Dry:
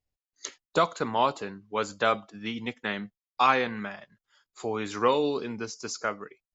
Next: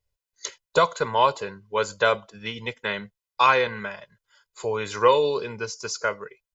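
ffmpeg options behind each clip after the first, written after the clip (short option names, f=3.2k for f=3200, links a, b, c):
-af "equalizer=f=320:t=o:w=0.36:g=-8,aecho=1:1:2:0.63,volume=3dB"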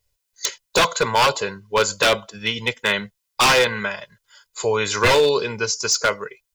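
-af "highshelf=f=2.8k:g=8,aeval=exprs='0.168*(abs(mod(val(0)/0.168+3,4)-2)-1)':c=same,volume=6dB"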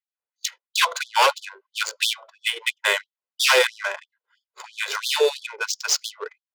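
-af "adynamicsmooth=sensitivity=2.5:basefreq=1.1k,afftfilt=real='re*gte(b*sr/1024,340*pow(3200/340,0.5+0.5*sin(2*PI*3*pts/sr)))':imag='im*gte(b*sr/1024,340*pow(3200/340,0.5+0.5*sin(2*PI*3*pts/sr)))':win_size=1024:overlap=0.75"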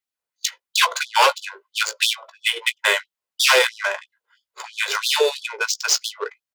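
-filter_complex "[0:a]asplit=2[a][b];[b]acompressor=threshold=-26dB:ratio=6,volume=-2dB[c];[a][c]amix=inputs=2:normalize=0,asplit=2[d][e];[e]adelay=17,volume=-11.5dB[f];[d][f]amix=inputs=2:normalize=0"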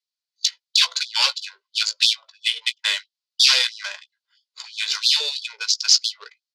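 -af "bandpass=f=4.5k:t=q:w=3.1:csg=0,volume=8.5dB"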